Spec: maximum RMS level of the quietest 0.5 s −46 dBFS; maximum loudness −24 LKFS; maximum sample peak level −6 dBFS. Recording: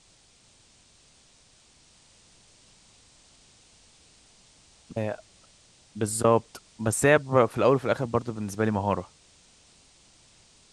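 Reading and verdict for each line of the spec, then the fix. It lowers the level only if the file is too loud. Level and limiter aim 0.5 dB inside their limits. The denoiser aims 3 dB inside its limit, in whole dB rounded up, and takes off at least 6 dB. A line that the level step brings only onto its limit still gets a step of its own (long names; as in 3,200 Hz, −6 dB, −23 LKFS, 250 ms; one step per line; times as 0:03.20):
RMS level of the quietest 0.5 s −59 dBFS: in spec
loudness −25.5 LKFS: in spec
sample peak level −6.5 dBFS: in spec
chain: no processing needed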